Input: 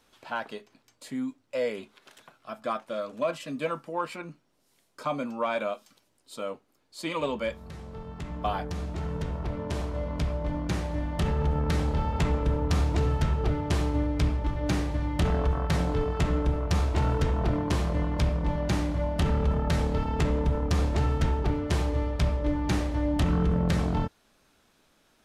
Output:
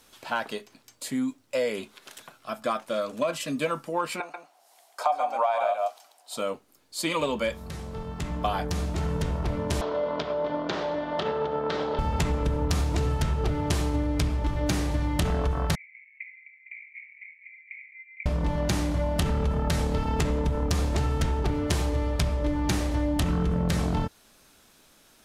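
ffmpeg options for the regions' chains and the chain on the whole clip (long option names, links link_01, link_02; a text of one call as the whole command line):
ffmpeg -i in.wav -filter_complex "[0:a]asettb=1/sr,asplit=3[link_01][link_02][link_03];[link_01]atrim=end=4.204[link_04];[link_02]atrim=start=4.2:end=6.37,asetpts=PTS-STARTPTS,afade=type=in:duration=0.004:curve=qsin,afade=type=out:start_time=2.166:duration=0.004:curve=qsin,highpass=frequency=730:width_type=q:width=8.6,highshelf=frequency=5800:gain=-4.5,aecho=1:1:138:0.562,atrim=end_sample=95697[link_05];[link_03]atrim=start=6.366[link_06];[link_04][link_05]acrossfade=duration=0.004:curve1=hsin:curve2=qsin[link_07];[link_07][link_06]acrossfade=duration=0.004:curve1=qsin:curve2=hsin,asettb=1/sr,asplit=3[link_08][link_09][link_10];[link_08]atrim=end=9.814[link_11];[link_09]atrim=start=9.81:end=11.99,asetpts=PTS-STARTPTS,afade=type=in:duration=0.004:curve=qsin,afade=type=out:start_time=2.176:duration=0.004:curve=qsin,acompressor=threshold=-28dB:ratio=3:attack=3.2:release=140:knee=1:detection=peak,highpass=280,equalizer=frequency=430:width_type=q:width=4:gain=7,equalizer=frequency=630:width_type=q:width=4:gain=7,equalizer=frequency=980:width_type=q:width=4:gain=5,equalizer=frequency=1400:width_type=q:width=4:gain=5,equalizer=frequency=2400:width_type=q:width=4:gain=-3,equalizer=frequency=3400:width_type=q:width=4:gain=4,lowpass=frequency=4600:width=0.5412,lowpass=frequency=4600:width=1.3066[link_12];[link_10]atrim=start=11.986[link_13];[link_11][link_12]acrossfade=duration=0.004:curve1=hsin:curve2=qsin[link_14];[link_14][link_13]acrossfade=duration=0.004:curve1=qsin:curve2=hsin,asettb=1/sr,asplit=3[link_15][link_16][link_17];[link_15]atrim=end=15.754[link_18];[link_16]atrim=start=15.75:end=18.26,asetpts=PTS-STARTPTS,afade=type=in:duration=0.004:curve=qsin,afade=type=out:start_time=2.506:duration=0.004:curve=qsin,asuperpass=centerf=2200:order=8:qfactor=5.7,aecho=1:1:458:0.224,atrim=end_sample=110691[link_19];[link_17]atrim=start=18.256[link_20];[link_18][link_19]acrossfade=duration=0.004:curve1=hsin:curve2=qsin[link_21];[link_21][link_20]acrossfade=duration=0.004:curve1=qsin:curve2=hsin,aemphasis=mode=production:type=cd,acompressor=threshold=-27dB:ratio=6,volume=5dB" out.wav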